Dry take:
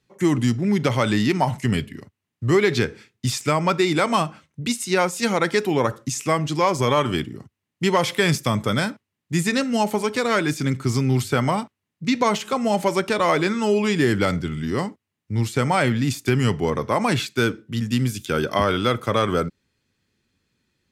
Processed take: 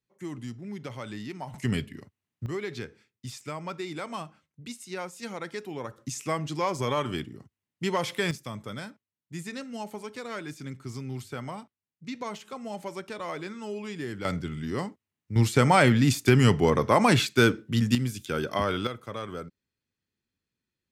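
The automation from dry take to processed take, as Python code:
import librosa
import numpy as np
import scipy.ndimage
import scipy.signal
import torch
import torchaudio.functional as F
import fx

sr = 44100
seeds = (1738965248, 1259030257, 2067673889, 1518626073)

y = fx.gain(x, sr, db=fx.steps((0.0, -18.0), (1.54, -6.0), (2.46, -16.0), (5.98, -8.5), (8.31, -16.0), (14.25, -7.0), (15.36, 0.5), (17.95, -7.0), (18.87, -15.5)))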